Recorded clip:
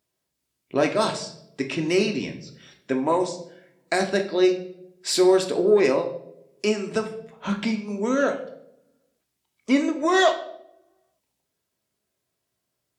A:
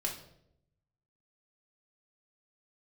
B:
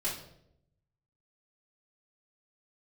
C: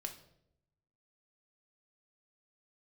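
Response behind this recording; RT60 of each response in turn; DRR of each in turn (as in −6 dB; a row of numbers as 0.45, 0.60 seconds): C; 0.75, 0.75, 0.75 seconds; −2.0, −9.5, 3.5 decibels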